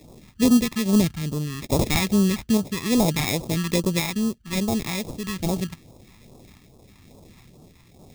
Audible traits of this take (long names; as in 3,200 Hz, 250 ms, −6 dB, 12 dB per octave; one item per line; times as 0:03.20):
sample-and-hold tremolo
aliases and images of a low sample rate 1,500 Hz, jitter 0%
phaser sweep stages 2, 2.4 Hz, lowest notch 500–1,900 Hz